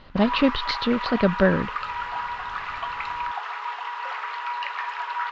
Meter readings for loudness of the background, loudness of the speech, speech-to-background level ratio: -30.0 LUFS, -23.0 LUFS, 7.0 dB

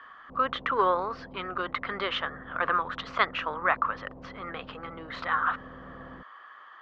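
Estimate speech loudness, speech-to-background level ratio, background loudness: -29.5 LUFS, 18.0 dB, -47.5 LUFS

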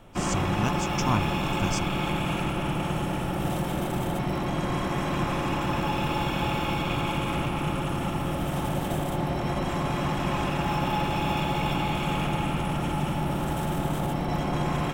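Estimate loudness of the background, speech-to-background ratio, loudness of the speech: -28.0 LUFS, -3.0 dB, -31.0 LUFS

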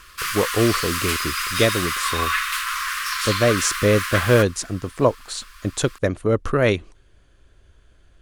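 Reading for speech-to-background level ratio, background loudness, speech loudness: 1.5 dB, -23.5 LUFS, -22.0 LUFS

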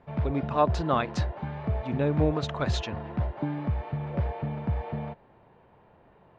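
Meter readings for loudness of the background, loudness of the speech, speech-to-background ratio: -32.5 LUFS, -29.0 LUFS, 3.5 dB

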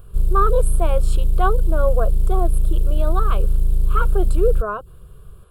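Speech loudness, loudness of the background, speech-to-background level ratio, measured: -25.0 LUFS, -22.5 LUFS, -2.5 dB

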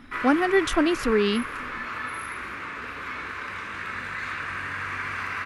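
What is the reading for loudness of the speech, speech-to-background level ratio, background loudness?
-23.0 LUFS, 9.0 dB, -32.0 LUFS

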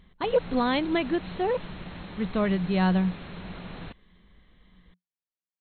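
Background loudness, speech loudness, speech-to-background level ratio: -41.0 LUFS, -27.0 LUFS, 14.0 dB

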